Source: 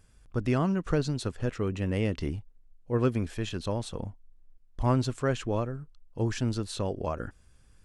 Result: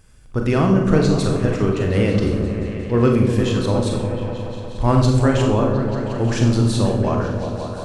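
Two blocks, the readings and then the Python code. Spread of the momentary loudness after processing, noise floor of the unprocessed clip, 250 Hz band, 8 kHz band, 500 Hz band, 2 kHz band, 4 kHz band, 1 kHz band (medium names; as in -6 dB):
9 LU, -59 dBFS, +13.0 dB, +10.5 dB, +12.0 dB, +10.5 dB, +10.5 dB, +11.0 dB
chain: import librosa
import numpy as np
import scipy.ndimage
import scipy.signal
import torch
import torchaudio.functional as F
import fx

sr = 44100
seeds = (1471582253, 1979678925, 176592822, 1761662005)

p1 = x + fx.echo_opening(x, sr, ms=178, hz=400, octaves=1, feedback_pct=70, wet_db=-3, dry=0)
p2 = fx.rev_schroeder(p1, sr, rt60_s=0.65, comb_ms=30, drr_db=2.0)
y = F.gain(torch.from_numpy(p2), 8.0).numpy()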